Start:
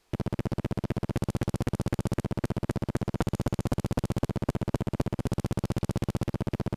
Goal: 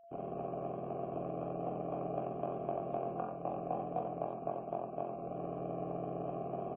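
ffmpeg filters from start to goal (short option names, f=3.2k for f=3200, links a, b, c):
-filter_complex "[0:a]afftfilt=real='re':imag='-im':win_size=2048:overlap=0.75,bandreject=f=64.76:t=h:w=4,bandreject=f=129.52:t=h:w=4,bandreject=f=194.28:t=h:w=4,bandreject=f=259.04:t=h:w=4,bandreject=f=323.8:t=h:w=4,bandreject=f=388.56:t=h:w=4,bandreject=f=453.32:t=h:w=4,bandreject=f=518.08:t=h:w=4,bandreject=f=582.84:t=h:w=4,bandreject=f=647.6:t=h:w=4,bandreject=f=712.36:t=h:w=4,bandreject=f=777.12:t=h:w=4,bandreject=f=841.88:t=h:w=4,bandreject=f=906.64:t=h:w=4,bandreject=f=971.4:t=h:w=4,bandreject=f=1.03616k:t=h:w=4,bandreject=f=1.10092k:t=h:w=4,bandreject=f=1.16568k:t=h:w=4,bandreject=f=1.23044k:t=h:w=4,afftfilt=real='re*gte(hypot(re,im),0.0316)':imag='im*gte(hypot(re,im),0.0316)':win_size=1024:overlap=0.75,aeval=exprs='clip(val(0),-1,0.0112)':c=same,asplit=3[a][b][c];[a]bandpass=f=730:t=q:w=8,volume=0dB[d];[b]bandpass=f=1.09k:t=q:w=8,volume=-6dB[e];[c]bandpass=f=2.44k:t=q:w=8,volume=-9dB[f];[d][e][f]amix=inputs=3:normalize=0,alimiter=level_in=17.5dB:limit=-24dB:level=0:latency=1:release=420,volume=-17.5dB,aeval=exprs='val(0)+0.000178*sin(2*PI*680*n/s)':c=same,asplit=2[g][h];[h]aecho=0:1:42|47|88|97|148|389:0.531|0.355|0.596|0.251|0.188|0.2[i];[g][i]amix=inputs=2:normalize=0,volume=18dB" -ar 16000 -c:a libmp3lame -b:a 16k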